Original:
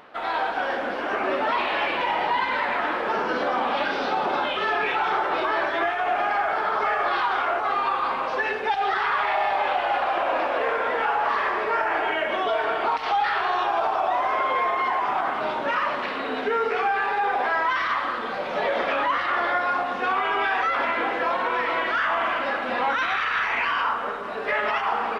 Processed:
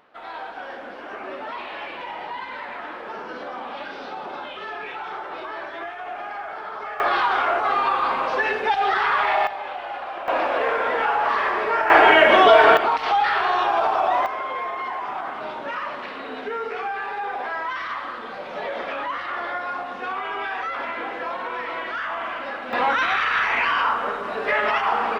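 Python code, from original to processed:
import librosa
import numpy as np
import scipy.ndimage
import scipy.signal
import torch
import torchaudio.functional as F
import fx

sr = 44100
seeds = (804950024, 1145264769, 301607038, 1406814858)

y = fx.gain(x, sr, db=fx.steps((0.0, -9.0), (7.0, 3.0), (9.47, -8.0), (10.28, 2.0), (11.9, 12.0), (12.77, 3.0), (14.26, -5.0), (22.73, 3.0)))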